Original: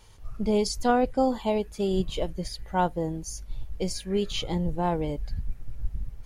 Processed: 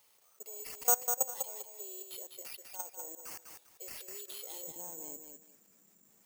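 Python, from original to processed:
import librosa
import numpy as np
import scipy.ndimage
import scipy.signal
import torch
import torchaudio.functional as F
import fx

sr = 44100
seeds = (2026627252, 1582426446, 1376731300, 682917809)

y = fx.steep_highpass(x, sr, hz=fx.steps((0.0, 400.0), (4.67, 200.0)), slope=36)
y = fx.level_steps(y, sr, step_db=22)
y = fx.echo_feedback(y, sr, ms=199, feedback_pct=27, wet_db=-6.0)
y = (np.kron(y[::6], np.eye(6)[0]) * 6)[:len(y)]
y = y * librosa.db_to_amplitude(-9.0)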